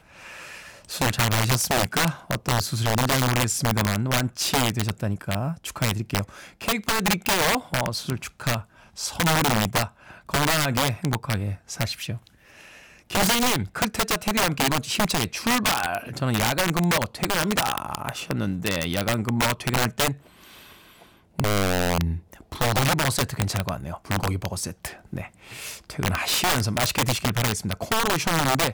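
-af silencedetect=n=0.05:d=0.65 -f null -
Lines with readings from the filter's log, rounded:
silence_start: 0.00
silence_end: 0.92 | silence_duration: 0.92
silence_start: 12.15
silence_end: 13.10 | silence_duration: 0.95
silence_start: 20.12
silence_end: 21.39 | silence_duration: 1.27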